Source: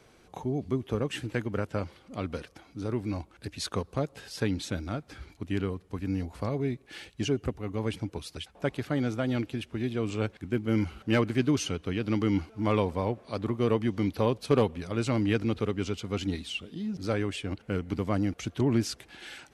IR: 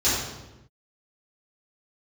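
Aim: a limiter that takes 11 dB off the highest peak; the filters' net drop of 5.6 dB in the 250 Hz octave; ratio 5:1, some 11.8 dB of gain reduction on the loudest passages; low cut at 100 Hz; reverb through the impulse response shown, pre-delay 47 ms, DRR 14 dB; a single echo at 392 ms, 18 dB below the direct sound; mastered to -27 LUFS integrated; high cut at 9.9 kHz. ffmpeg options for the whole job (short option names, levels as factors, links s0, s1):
-filter_complex "[0:a]highpass=100,lowpass=9900,equalizer=f=250:t=o:g=-7,acompressor=threshold=0.02:ratio=5,alimiter=level_in=2.11:limit=0.0631:level=0:latency=1,volume=0.473,aecho=1:1:392:0.126,asplit=2[s0][s1];[1:a]atrim=start_sample=2205,adelay=47[s2];[s1][s2]afir=irnorm=-1:irlink=0,volume=0.0335[s3];[s0][s3]amix=inputs=2:normalize=0,volume=5.96"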